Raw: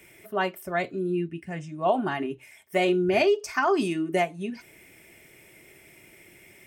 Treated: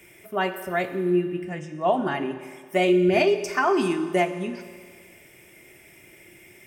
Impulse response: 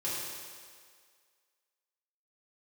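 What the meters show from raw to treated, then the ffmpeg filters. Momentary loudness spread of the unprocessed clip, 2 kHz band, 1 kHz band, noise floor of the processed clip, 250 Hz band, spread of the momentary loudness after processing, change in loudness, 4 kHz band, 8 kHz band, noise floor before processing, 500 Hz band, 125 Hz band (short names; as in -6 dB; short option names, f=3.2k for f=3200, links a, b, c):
13 LU, +2.0 dB, +2.0 dB, -52 dBFS, +3.5 dB, 13 LU, +2.5 dB, +1.5 dB, +1.5 dB, -54 dBFS, +2.5 dB, +3.0 dB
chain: -filter_complex "[0:a]bandreject=f=4.2k:w=18,asplit=2[a][b];[1:a]atrim=start_sample=2205[c];[b][c]afir=irnorm=-1:irlink=0,volume=-12dB[d];[a][d]amix=inputs=2:normalize=0"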